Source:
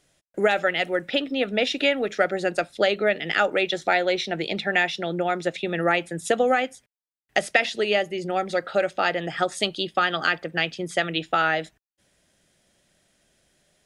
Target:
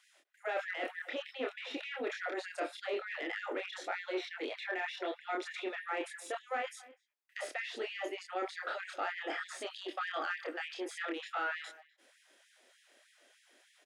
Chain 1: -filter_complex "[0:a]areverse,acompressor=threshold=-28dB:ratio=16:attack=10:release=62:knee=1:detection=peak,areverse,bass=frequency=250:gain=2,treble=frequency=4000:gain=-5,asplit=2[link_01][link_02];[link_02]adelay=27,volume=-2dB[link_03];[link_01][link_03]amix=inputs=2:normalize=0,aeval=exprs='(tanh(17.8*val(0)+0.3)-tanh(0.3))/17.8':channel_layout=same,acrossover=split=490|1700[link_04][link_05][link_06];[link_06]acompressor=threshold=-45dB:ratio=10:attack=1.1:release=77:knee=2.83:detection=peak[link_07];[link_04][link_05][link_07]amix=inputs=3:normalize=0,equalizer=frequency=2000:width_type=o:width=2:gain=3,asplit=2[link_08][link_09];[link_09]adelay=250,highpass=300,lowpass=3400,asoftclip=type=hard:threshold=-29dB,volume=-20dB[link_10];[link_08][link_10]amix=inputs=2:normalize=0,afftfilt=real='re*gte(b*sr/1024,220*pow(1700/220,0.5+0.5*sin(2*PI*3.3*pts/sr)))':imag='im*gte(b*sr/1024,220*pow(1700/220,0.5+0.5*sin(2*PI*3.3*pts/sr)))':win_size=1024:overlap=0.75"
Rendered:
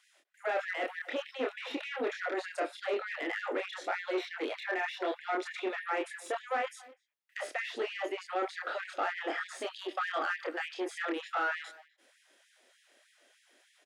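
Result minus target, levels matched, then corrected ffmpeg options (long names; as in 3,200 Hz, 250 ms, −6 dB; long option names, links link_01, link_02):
downward compressor: peak gain reduction −6 dB
-filter_complex "[0:a]areverse,acompressor=threshold=-34.5dB:ratio=16:attack=10:release=62:knee=1:detection=peak,areverse,bass=frequency=250:gain=2,treble=frequency=4000:gain=-5,asplit=2[link_01][link_02];[link_02]adelay=27,volume=-2dB[link_03];[link_01][link_03]amix=inputs=2:normalize=0,aeval=exprs='(tanh(17.8*val(0)+0.3)-tanh(0.3))/17.8':channel_layout=same,acrossover=split=490|1700[link_04][link_05][link_06];[link_06]acompressor=threshold=-45dB:ratio=10:attack=1.1:release=77:knee=2.83:detection=peak[link_07];[link_04][link_05][link_07]amix=inputs=3:normalize=0,equalizer=frequency=2000:width_type=o:width=2:gain=3,asplit=2[link_08][link_09];[link_09]adelay=250,highpass=300,lowpass=3400,asoftclip=type=hard:threshold=-29dB,volume=-20dB[link_10];[link_08][link_10]amix=inputs=2:normalize=0,afftfilt=real='re*gte(b*sr/1024,220*pow(1700/220,0.5+0.5*sin(2*PI*3.3*pts/sr)))':imag='im*gte(b*sr/1024,220*pow(1700/220,0.5+0.5*sin(2*PI*3.3*pts/sr)))':win_size=1024:overlap=0.75"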